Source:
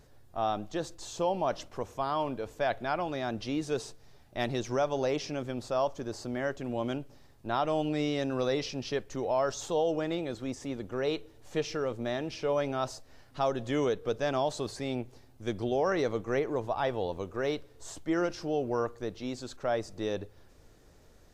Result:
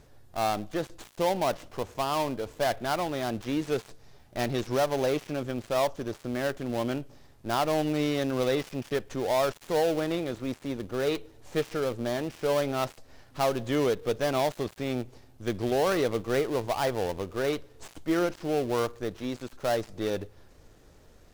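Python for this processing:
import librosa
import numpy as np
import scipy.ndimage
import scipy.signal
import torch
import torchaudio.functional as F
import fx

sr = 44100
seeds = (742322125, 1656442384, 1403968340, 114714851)

y = fx.dead_time(x, sr, dead_ms=0.17)
y = F.gain(torch.from_numpy(y), 3.0).numpy()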